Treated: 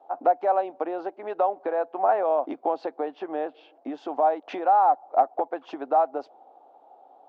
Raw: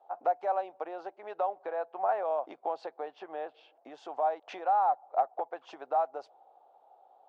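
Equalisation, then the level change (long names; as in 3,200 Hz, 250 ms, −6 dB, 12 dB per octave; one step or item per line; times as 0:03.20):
high-frequency loss of the air 98 metres
parametric band 270 Hz +14 dB 0.81 octaves
+6.5 dB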